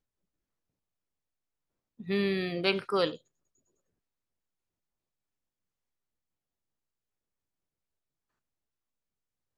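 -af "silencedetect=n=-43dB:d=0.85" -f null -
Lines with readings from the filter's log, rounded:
silence_start: 0.00
silence_end: 2.00 | silence_duration: 2.00
silence_start: 3.16
silence_end: 9.58 | silence_duration: 6.42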